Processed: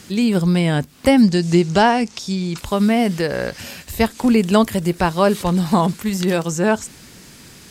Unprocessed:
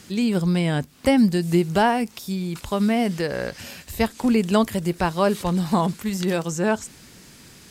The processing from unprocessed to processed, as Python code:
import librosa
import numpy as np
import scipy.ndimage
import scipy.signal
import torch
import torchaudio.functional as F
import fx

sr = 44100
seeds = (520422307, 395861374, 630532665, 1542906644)

y = fx.lowpass_res(x, sr, hz=6300.0, q=1.9, at=(1.22, 2.58))
y = y * librosa.db_to_amplitude(4.5)